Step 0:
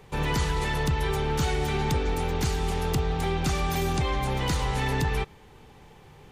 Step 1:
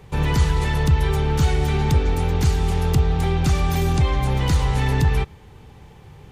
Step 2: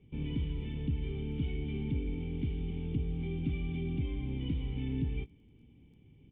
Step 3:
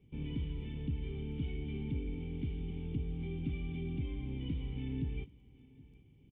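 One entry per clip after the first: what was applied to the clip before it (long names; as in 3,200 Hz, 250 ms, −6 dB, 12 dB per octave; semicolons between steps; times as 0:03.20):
parametric band 82 Hz +9.5 dB 2 octaves; level +2 dB
formant resonators in series i; double-tracking delay 18 ms −11.5 dB; surface crackle 12 per second −57 dBFS; level −4 dB
single-tap delay 774 ms −22.5 dB; level −3.5 dB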